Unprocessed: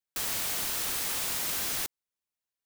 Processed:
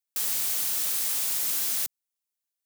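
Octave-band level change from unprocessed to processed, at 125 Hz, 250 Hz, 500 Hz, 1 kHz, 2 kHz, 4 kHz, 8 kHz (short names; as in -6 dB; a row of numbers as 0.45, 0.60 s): n/a, -6.0 dB, -6.0 dB, -5.0 dB, -3.5 dB, 0.0 dB, +4.0 dB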